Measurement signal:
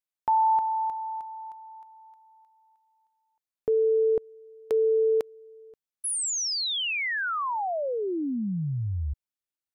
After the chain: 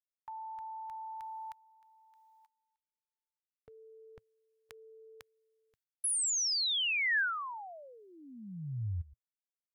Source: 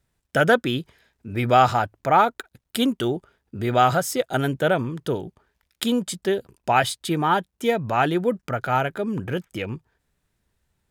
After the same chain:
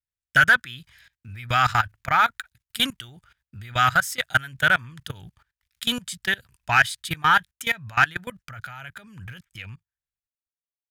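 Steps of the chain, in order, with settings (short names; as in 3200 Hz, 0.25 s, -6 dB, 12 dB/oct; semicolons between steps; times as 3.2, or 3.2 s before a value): ending faded out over 3.37 s; gate with hold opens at -54 dBFS, closes at -55 dBFS, hold 18 ms, range -18 dB; level quantiser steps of 21 dB; EQ curve 110 Hz 0 dB, 390 Hz -23 dB, 1700 Hz +3 dB; soft clip -18.5 dBFS; dynamic EQ 1600 Hz, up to +6 dB, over -42 dBFS, Q 1.7; gain +7.5 dB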